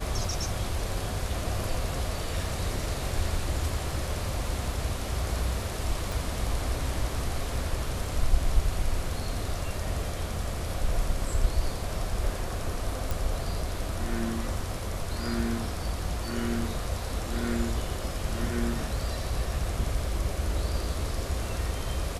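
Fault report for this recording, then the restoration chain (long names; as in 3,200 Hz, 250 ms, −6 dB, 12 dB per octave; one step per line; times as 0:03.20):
0:06.12: click
0:13.11: click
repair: click removal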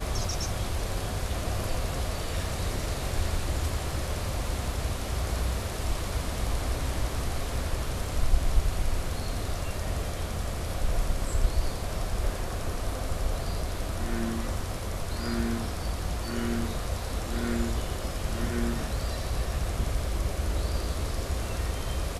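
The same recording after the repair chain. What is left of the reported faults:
0:06.12: click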